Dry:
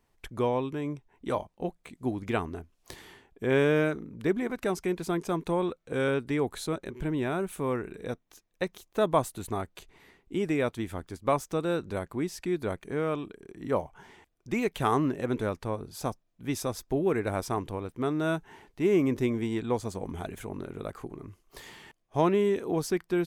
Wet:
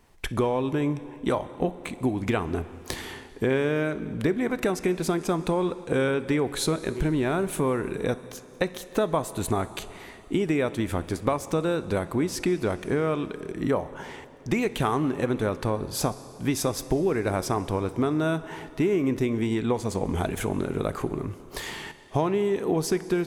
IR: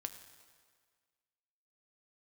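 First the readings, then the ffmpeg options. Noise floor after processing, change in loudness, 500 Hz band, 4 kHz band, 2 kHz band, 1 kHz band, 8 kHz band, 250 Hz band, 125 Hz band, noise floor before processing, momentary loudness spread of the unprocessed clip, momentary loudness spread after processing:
-46 dBFS, +3.0 dB, +3.0 dB, +6.5 dB, +3.5 dB, +2.5 dB, +8.0 dB, +4.0 dB, +5.0 dB, -72 dBFS, 13 LU, 9 LU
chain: -filter_complex "[0:a]acompressor=threshold=-34dB:ratio=6,asplit=2[a][b];[1:a]atrim=start_sample=2205,asetrate=23814,aresample=44100[c];[b][c]afir=irnorm=-1:irlink=0,volume=-3dB[d];[a][d]amix=inputs=2:normalize=0,volume=7.5dB"

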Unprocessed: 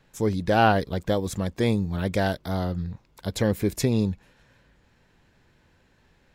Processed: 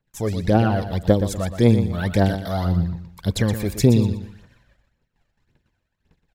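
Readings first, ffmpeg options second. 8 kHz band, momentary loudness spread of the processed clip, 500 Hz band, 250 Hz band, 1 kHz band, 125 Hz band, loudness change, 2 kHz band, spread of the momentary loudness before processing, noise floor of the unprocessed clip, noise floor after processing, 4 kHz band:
+3.5 dB, 10 LU, +3.0 dB, +5.5 dB, -2.5 dB, +7.5 dB, +4.5 dB, -2.0 dB, 12 LU, -63 dBFS, -75 dBFS, +1.5 dB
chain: -filter_complex "[0:a]agate=range=-24dB:threshold=-58dB:ratio=16:detection=peak,acrossover=split=490[a][b];[b]acompressor=threshold=-27dB:ratio=10[c];[a][c]amix=inputs=2:normalize=0,aphaser=in_gain=1:out_gain=1:delay=1.8:decay=0.63:speed=1.8:type=triangular,aecho=1:1:121|242|363:0.316|0.0917|0.0266,volume=1.5dB"

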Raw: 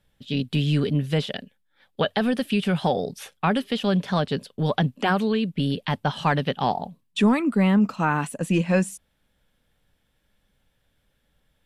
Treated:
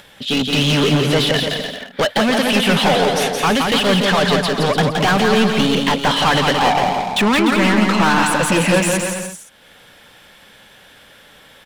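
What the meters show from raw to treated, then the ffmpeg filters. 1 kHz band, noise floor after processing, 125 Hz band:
+10.0 dB, -47 dBFS, +4.0 dB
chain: -filter_complex "[0:a]asplit=2[a][b];[b]highpass=f=720:p=1,volume=29dB,asoftclip=type=tanh:threshold=-9dB[c];[a][c]amix=inputs=2:normalize=0,lowpass=f=5.2k:p=1,volume=-6dB,aecho=1:1:170|297.5|393.1|464.8|518.6:0.631|0.398|0.251|0.158|0.1,acompressor=mode=upward:threshold=-38dB:ratio=2.5"

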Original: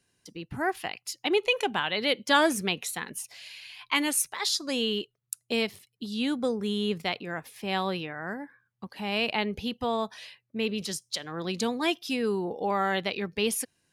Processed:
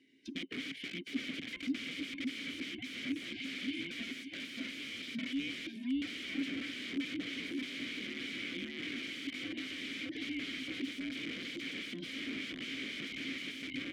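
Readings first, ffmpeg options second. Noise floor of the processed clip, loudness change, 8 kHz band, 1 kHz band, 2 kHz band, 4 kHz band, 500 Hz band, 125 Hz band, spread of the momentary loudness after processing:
-47 dBFS, -10.5 dB, -19.5 dB, -28.0 dB, -8.0 dB, -8.5 dB, -21.5 dB, -14.0 dB, 4 LU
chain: -filter_complex "[0:a]afftfilt=real='real(if(between(b,1,1008),(2*floor((b-1)/24)+1)*24-b,b),0)':imag='imag(if(between(b,1,1008),(2*floor((b-1)/24)+1)*24-b,b),0)*if(between(b,1,1008),-1,1)':win_size=2048:overlap=0.75,superequalizer=8b=1.58:10b=0.282,asplit=2[a][b];[b]adelay=577,lowpass=f=2.5k:p=1,volume=-3.5dB,asplit=2[c][d];[d]adelay=577,lowpass=f=2.5k:p=1,volume=0.33,asplit=2[e][f];[f]adelay=577,lowpass=f=2.5k:p=1,volume=0.33,asplit=2[g][h];[h]adelay=577,lowpass=f=2.5k:p=1,volume=0.33[i];[a][c][e][g][i]amix=inputs=5:normalize=0,alimiter=limit=-21dB:level=0:latency=1:release=486,aeval=exprs='(mod(53.1*val(0)+1,2)-1)/53.1':c=same,acompressor=threshold=-43dB:ratio=2.5,asplit=3[j][k][l];[j]bandpass=f=270:t=q:w=8,volume=0dB[m];[k]bandpass=f=2.29k:t=q:w=8,volume=-6dB[n];[l]bandpass=f=3.01k:t=q:w=8,volume=-9dB[o];[m][n][o]amix=inputs=3:normalize=0,highshelf=f=8.3k:g=-8,volume=17.5dB"

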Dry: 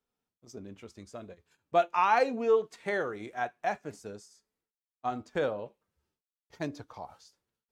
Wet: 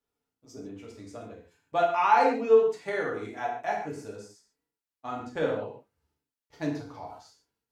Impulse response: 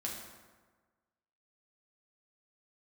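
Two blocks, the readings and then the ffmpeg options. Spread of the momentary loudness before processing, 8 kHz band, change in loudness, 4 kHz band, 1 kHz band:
22 LU, n/a, +3.5 dB, +1.5 dB, +3.5 dB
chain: -filter_complex "[1:a]atrim=start_sample=2205,afade=t=out:st=0.26:d=0.01,atrim=end_sample=11907,asetrate=57330,aresample=44100[a];[0:a][a]afir=irnorm=-1:irlink=0,volume=3.5dB"

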